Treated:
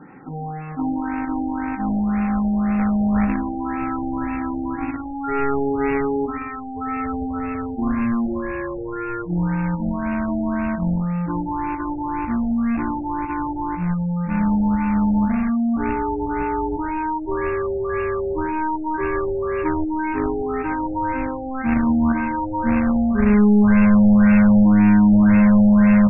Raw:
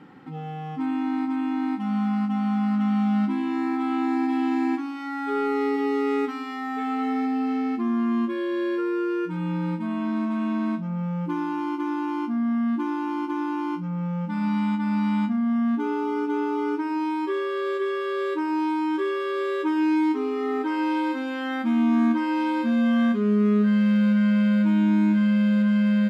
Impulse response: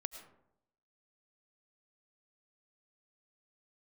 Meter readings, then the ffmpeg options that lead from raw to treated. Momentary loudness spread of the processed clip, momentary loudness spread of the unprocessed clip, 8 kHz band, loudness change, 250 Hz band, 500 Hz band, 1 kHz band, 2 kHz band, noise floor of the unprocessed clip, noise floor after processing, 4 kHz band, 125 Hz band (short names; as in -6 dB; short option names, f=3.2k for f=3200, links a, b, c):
13 LU, 8 LU, n/a, +4.0 dB, +4.0 dB, +3.0 dB, +5.0 dB, +4.0 dB, -32 dBFS, -29 dBFS, under -15 dB, +7.0 dB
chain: -filter_complex "[1:a]atrim=start_sample=2205,asetrate=52920,aresample=44100[a];[0:a][a]afir=irnorm=-1:irlink=0,acrusher=bits=2:mode=log:mix=0:aa=0.000001,asubboost=boost=8:cutoff=100,afftfilt=real='re*lt(b*sr/1024,850*pow(2800/850,0.5+0.5*sin(2*PI*1.9*pts/sr)))':imag='im*lt(b*sr/1024,850*pow(2800/850,0.5+0.5*sin(2*PI*1.9*pts/sr)))':win_size=1024:overlap=0.75,volume=9dB"